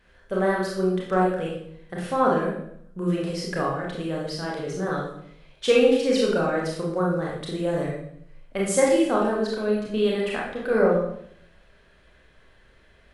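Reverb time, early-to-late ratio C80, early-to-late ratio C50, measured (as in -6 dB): 0.70 s, 6.0 dB, 2.0 dB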